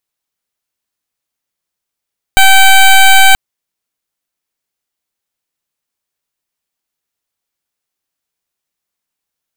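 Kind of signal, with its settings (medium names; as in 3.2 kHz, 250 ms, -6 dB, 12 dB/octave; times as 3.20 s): pulse 772 Hz, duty 14% -4 dBFS 0.98 s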